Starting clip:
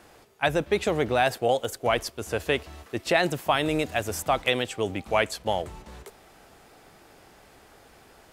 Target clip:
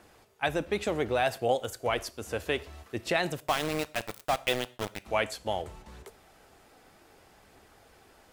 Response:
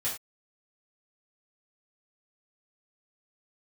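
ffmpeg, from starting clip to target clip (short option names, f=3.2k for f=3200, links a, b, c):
-filter_complex "[0:a]aphaser=in_gain=1:out_gain=1:delay=4.2:decay=0.22:speed=0.66:type=triangular,asettb=1/sr,asplit=3[a][b][c];[a]atrim=end=3.404[d];[b]atrim=start=3.4:end=5.05,asetpts=PTS-STARTPTS,afade=t=in:d=0.004:c=qsin,afade=t=out:st=1.646:d=0.004:c=qsin,aeval=exprs='val(0)*gte(abs(val(0)),0.0708)':c=same[e];[c]atrim=start=5.046[f];[d][e]acrossfade=d=0.004:c1=hsin:c2=qsin[g];[g][f]acrossfade=d=0.004:c1=qsin:c2=hsin,asplit=2[h][i];[1:a]atrim=start_sample=2205,asetrate=35280,aresample=44100[j];[i][j]afir=irnorm=-1:irlink=0,volume=-21dB[k];[h][k]amix=inputs=2:normalize=0,volume=-5.5dB"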